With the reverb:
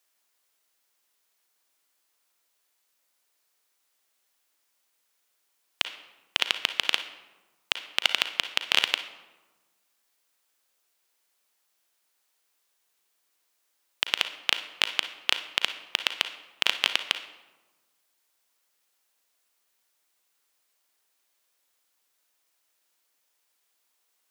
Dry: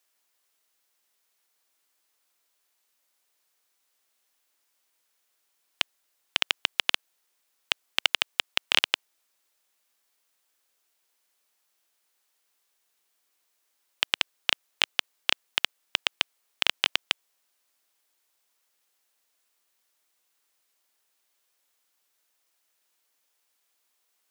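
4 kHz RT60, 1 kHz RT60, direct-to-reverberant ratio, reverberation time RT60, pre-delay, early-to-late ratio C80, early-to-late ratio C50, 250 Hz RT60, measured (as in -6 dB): 0.70 s, 1.2 s, 9.0 dB, 1.2 s, 37 ms, 14.0 dB, 10.5 dB, 1.5 s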